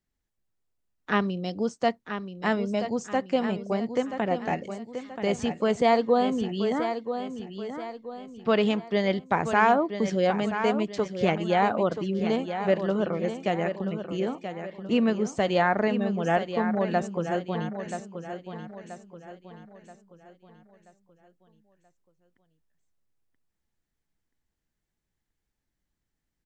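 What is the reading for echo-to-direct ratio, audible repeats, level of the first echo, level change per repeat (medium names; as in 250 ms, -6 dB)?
-8.0 dB, 4, -9.0 dB, -7.5 dB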